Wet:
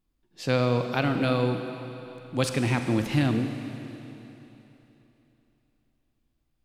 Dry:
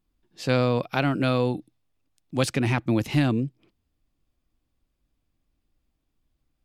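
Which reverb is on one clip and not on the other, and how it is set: Schroeder reverb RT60 3.3 s, combs from 33 ms, DRR 6 dB; gain -2 dB

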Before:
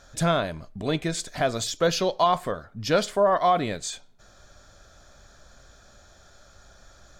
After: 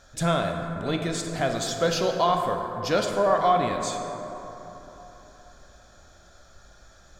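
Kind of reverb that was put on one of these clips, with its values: plate-style reverb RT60 3.7 s, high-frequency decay 0.35×, DRR 3 dB; gain -2 dB

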